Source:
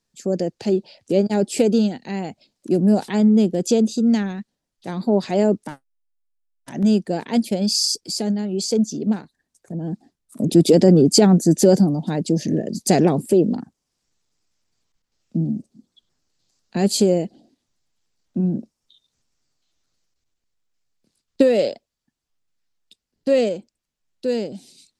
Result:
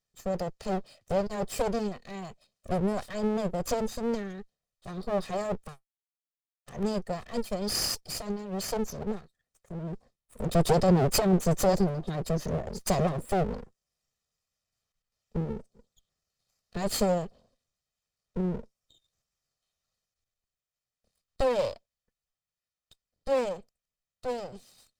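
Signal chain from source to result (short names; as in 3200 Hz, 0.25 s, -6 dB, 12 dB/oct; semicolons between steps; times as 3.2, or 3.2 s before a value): minimum comb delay 1.6 ms; gain -7.5 dB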